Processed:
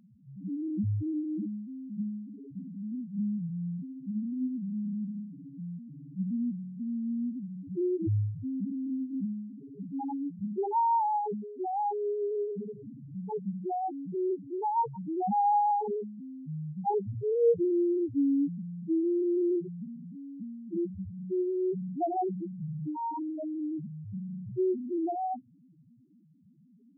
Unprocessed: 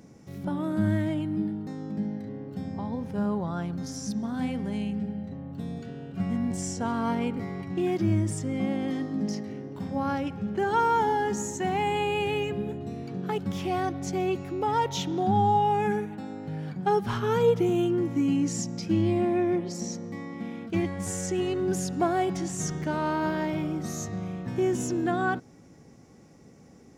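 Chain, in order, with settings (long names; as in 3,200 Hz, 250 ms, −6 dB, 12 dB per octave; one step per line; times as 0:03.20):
Chebyshev low-pass filter 1,100 Hz, order 2
spectral peaks only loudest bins 1
level +3.5 dB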